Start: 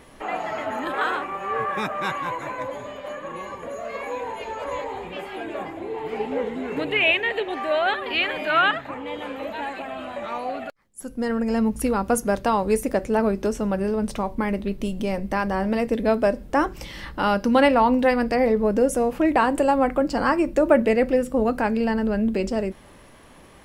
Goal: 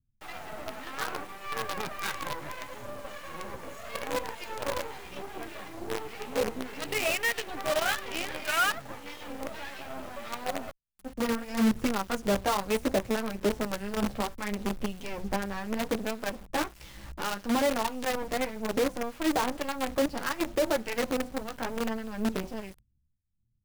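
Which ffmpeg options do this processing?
-filter_complex "[0:a]agate=range=-12dB:threshold=-38dB:ratio=16:detection=peak,acrossover=split=4600[a][b];[b]acompressor=threshold=-59dB:ratio=4:attack=1:release=60[c];[a][c]amix=inputs=2:normalize=0,highshelf=f=3.9k:g=6,asplit=2[d][e];[e]alimiter=limit=-14.5dB:level=0:latency=1:release=97,volume=0dB[f];[d][f]amix=inputs=2:normalize=0,dynaudnorm=f=290:g=17:m=11dB,flanger=delay=8.5:depth=6.9:regen=-3:speed=0.68:shape=sinusoidal,acrossover=split=1100[g][h];[g]aeval=exprs='val(0)*(1-0.7/2+0.7/2*cos(2*PI*1.7*n/s))':c=same[i];[h]aeval=exprs='val(0)*(1-0.7/2-0.7/2*cos(2*PI*1.7*n/s))':c=same[j];[i][j]amix=inputs=2:normalize=0,acrossover=split=150[k][l];[l]acrusher=bits=4:dc=4:mix=0:aa=0.000001[m];[k][m]amix=inputs=2:normalize=0,asoftclip=type=tanh:threshold=-8dB,volume=-8dB"

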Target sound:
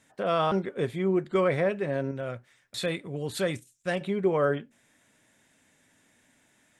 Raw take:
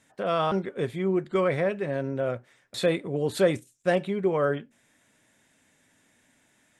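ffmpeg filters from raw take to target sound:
-filter_complex "[0:a]asettb=1/sr,asplit=3[a][b][c];[a]atrim=end=2.114[d];[b]atrim=start=2.11:end=4.01,asetpts=PTS-STARTPTS,afade=t=in:d=0.004:c=qsin,afade=t=out:st=1.896:d=0.004:c=qsin,equalizer=f=460:t=o:w=2.7:g=-7.5[e];[c]atrim=start=4.006[f];[d][e]acrossfade=d=0.004:c1=hsin:c2=qsin[g];[g][f]acrossfade=d=0.004:c1=qsin:c2=hsin"

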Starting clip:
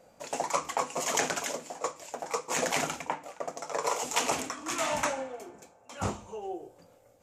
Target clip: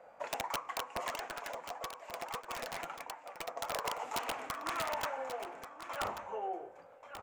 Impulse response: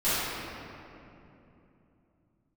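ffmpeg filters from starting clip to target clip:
-filter_complex "[0:a]acrossover=split=560 2200:gain=0.126 1 0.0708[a][b][c];[a][b][c]amix=inputs=3:normalize=0,acompressor=threshold=-41dB:ratio=6,aeval=exprs='(mod(50.1*val(0)+1,2)-1)/50.1':c=same,asplit=3[d][e][f];[d]afade=t=out:st=1.09:d=0.02[g];[e]flanger=delay=2.6:depth=3.4:regen=62:speed=1.6:shape=sinusoidal,afade=t=in:st=1.09:d=0.02,afade=t=out:st=3.48:d=0.02[h];[f]afade=t=in:st=3.48:d=0.02[i];[g][h][i]amix=inputs=3:normalize=0,aecho=1:1:1135:0.299,volume=7dB"

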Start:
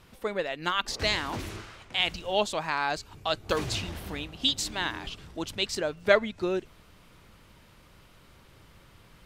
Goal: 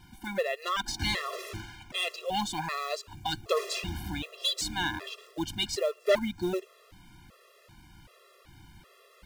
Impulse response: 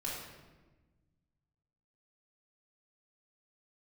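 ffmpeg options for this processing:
-af "acrusher=bits=5:mode=log:mix=0:aa=0.000001,asoftclip=type=tanh:threshold=-19dB,afftfilt=real='re*gt(sin(2*PI*1.3*pts/sr)*(1-2*mod(floor(b*sr/1024/350),2)),0)':imag='im*gt(sin(2*PI*1.3*pts/sr)*(1-2*mod(floor(b*sr/1024/350),2)),0)':win_size=1024:overlap=0.75,volume=3dB"

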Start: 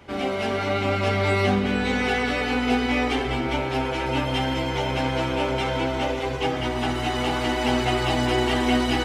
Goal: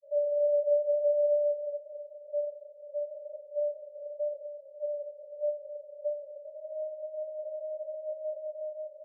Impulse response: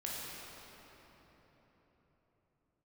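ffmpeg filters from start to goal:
-af "aecho=1:1:90:0.299,alimiter=limit=-19.5dB:level=0:latency=1:release=179,asuperpass=centerf=580:order=20:qfactor=8,volume=9dB"

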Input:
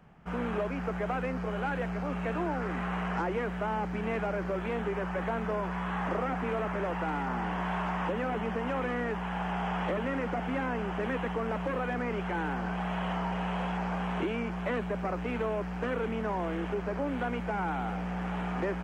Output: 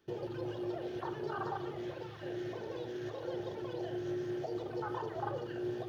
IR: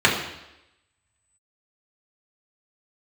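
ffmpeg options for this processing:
-filter_complex "[0:a]atempo=1.6,aemphasis=mode=production:type=75kf,alimiter=level_in=4.5dB:limit=-24dB:level=0:latency=1:release=280,volume=-4.5dB,afwtdn=0.0447,asetrate=88200,aresample=44100,asplit=2[a][b];[1:a]atrim=start_sample=2205[c];[b][c]afir=irnorm=-1:irlink=0,volume=-22.5dB[d];[a][d]amix=inputs=2:normalize=0,volume=-1dB"

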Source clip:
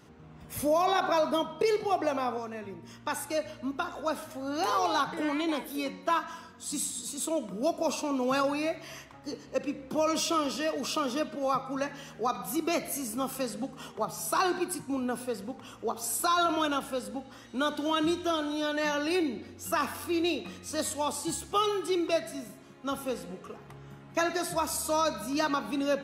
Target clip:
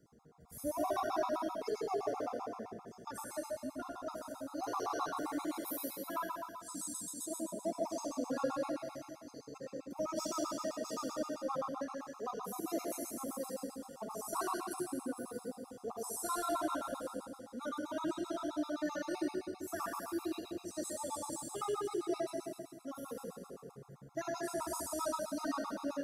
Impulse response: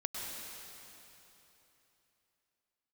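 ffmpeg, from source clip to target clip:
-filter_complex "[0:a]asettb=1/sr,asplit=3[a][b][c];[a]atrim=end=5.134[d];[b]atrim=start=5.13:end=5.88,asetpts=PTS-STARTPTS,afade=t=in:d=0.004:c=qsin,afade=t=out:st=0.746:d=0.004:c=qsin,aemphasis=mode=production:type=50fm[e];[c]atrim=start=5.876[f];[d][e]acrossfade=d=0.004:c1=hsin:c2=qsin[g];[g][f]acrossfade=d=0.004:c1=qsin:c2=hsin,acrossover=split=150|4100[h][i][j];[h]tremolo=f=1.9:d=0.66[k];[i]adynamicsmooth=sensitivity=0.5:basefreq=1.3k[l];[k][l][j]amix=inputs=3:normalize=0[m];[1:a]atrim=start_sample=2205,asetrate=79380,aresample=44100[n];[m][n]afir=irnorm=-1:irlink=0,afftfilt=real='re*gt(sin(2*PI*7.7*pts/sr)*(1-2*mod(floor(b*sr/1024/690),2)),0)':imag='im*gt(sin(2*PI*7.7*pts/sr)*(1-2*mod(floor(b*sr/1024/690),2)),0)':win_size=1024:overlap=0.75,volume=-1dB"

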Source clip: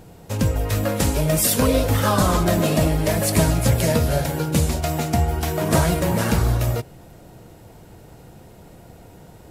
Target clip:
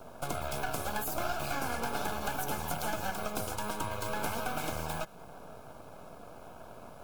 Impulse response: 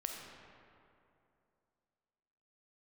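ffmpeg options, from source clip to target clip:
-filter_complex "[0:a]equalizer=f=500:t=o:w=1.2:g=13.5,acrossover=split=2700[a][b];[a]aeval=exprs='max(val(0),0)':c=same[c];[c][b]amix=inputs=2:normalize=0,acrossover=split=280|920[d][e][f];[d]acompressor=threshold=-31dB:ratio=4[g];[e]acompressor=threshold=-34dB:ratio=4[h];[f]acompressor=threshold=-31dB:ratio=4[i];[g][h][i]amix=inputs=3:normalize=0,asuperstop=centerf=1400:order=20:qfactor=5.5,asetrate=59535,aresample=44100,volume=-6.5dB"

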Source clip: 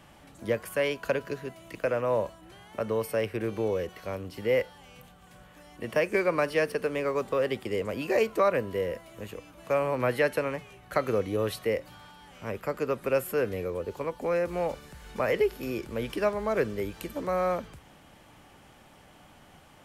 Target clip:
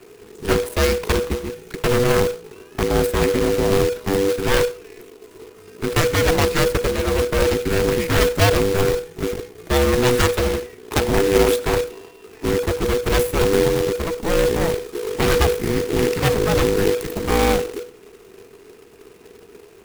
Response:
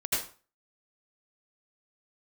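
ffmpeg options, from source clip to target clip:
-filter_complex "[0:a]lowshelf=f=140:t=q:w=1.5:g=12,aeval=exprs='0.237*(cos(1*acos(clip(val(0)/0.237,-1,1)))-cos(1*PI/2))+0.0531*(cos(6*acos(clip(val(0)/0.237,-1,1)))-cos(6*PI/2))+0.0075*(cos(7*acos(clip(val(0)/0.237,-1,1)))-cos(7*PI/2))+0.106*(cos(8*acos(clip(val(0)/0.237,-1,1)))-cos(8*PI/2))':c=same,afreqshift=-490,acrusher=bits=2:mode=log:mix=0:aa=0.000001,asplit=2[a][b];[1:a]atrim=start_sample=2205[c];[b][c]afir=irnorm=-1:irlink=0,volume=-29dB[d];[a][d]amix=inputs=2:normalize=0,volume=5dB"

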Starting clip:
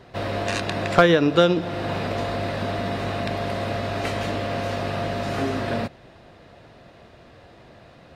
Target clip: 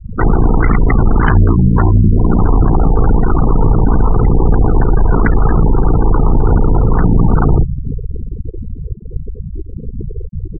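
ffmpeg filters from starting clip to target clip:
-filter_complex "[0:a]acrossover=split=140[a][b];[b]acompressor=threshold=-31dB:ratio=16[c];[a][c]amix=inputs=2:normalize=0,bandreject=f=71.61:t=h:w=4,bandreject=f=143.22:t=h:w=4,bandreject=f=214.83:t=h:w=4,bandreject=f=286.44:t=h:w=4,bandreject=f=358.05:t=h:w=4,bandreject=f=429.66:t=h:w=4,bandreject=f=501.27:t=h:w=4,bandreject=f=572.88:t=h:w=4,bandreject=f=644.49:t=h:w=4,bandreject=f=716.1:t=h:w=4,bandreject=f=787.71:t=h:w=4,asplit=2[d][e];[e]aecho=0:1:342|684:0.0891|0.0223[f];[d][f]amix=inputs=2:normalize=0,adynamicsmooth=sensitivity=4:basefreq=1.3k,afreqshift=-84,aeval=exprs='0.119*sin(PI/2*3.55*val(0)/0.119)':c=same,adynamicequalizer=threshold=0.00891:dfrequency=440:dqfactor=1.4:tfrequency=440:tqfactor=1.4:attack=5:release=100:ratio=0.375:range=2:mode=cutabove:tftype=bell,asetrate=33957,aresample=44100,afftfilt=real='re*gte(hypot(re,im),0.0891)':imag='im*gte(hypot(re,im),0.0891)':win_size=1024:overlap=0.75,aeval=exprs='val(0)*sin(2*PI*29*n/s)':c=same,equalizer=f=560:w=2.2:g=-15,alimiter=level_in=21.5dB:limit=-1dB:release=50:level=0:latency=1,volume=-1dB"

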